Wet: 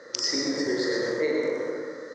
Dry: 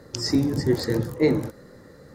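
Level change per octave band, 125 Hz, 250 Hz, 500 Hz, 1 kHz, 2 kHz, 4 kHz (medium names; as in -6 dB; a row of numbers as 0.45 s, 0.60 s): -20.0 dB, -6.5 dB, -0.5 dB, -0.5 dB, +5.0 dB, +3.0 dB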